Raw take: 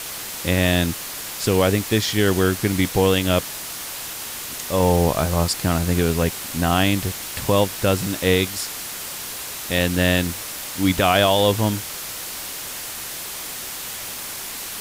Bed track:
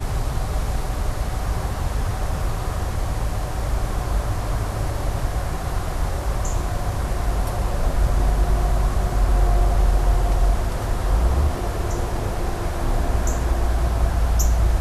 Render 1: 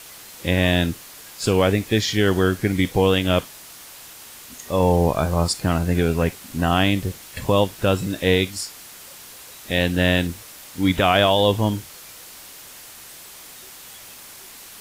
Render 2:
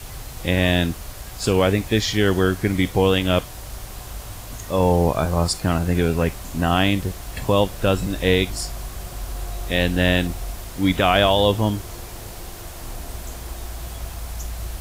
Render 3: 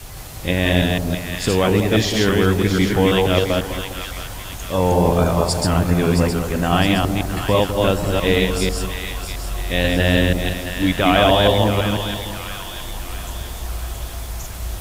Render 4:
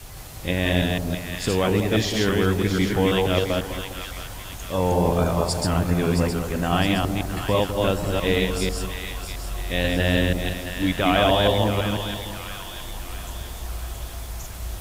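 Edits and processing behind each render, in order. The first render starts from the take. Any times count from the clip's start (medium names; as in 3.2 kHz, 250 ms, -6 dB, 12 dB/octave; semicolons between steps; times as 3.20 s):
noise print and reduce 10 dB
add bed track -12.5 dB
chunks repeated in reverse 164 ms, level -2 dB; two-band feedback delay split 970 Hz, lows 203 ms, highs 666 ms, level -8 dB
trim -4.5 dB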